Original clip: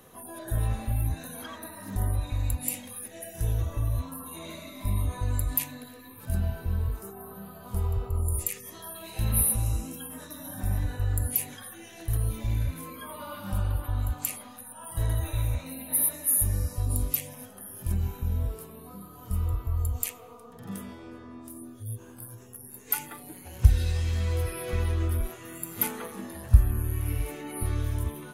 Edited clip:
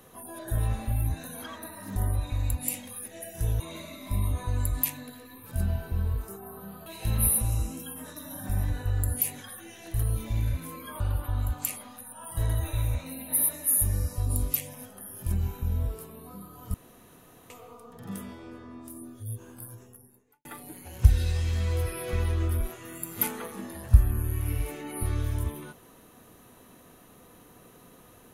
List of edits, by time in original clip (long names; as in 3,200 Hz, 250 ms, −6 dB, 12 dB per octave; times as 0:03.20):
0:03.60–0:04.34: remove
0:07.60–0:09.00: remove
0:13.14–0:13.60: remove
0:19.34–0:20.10: fill with room tone
0:22.24–0:23.05: fade out and dull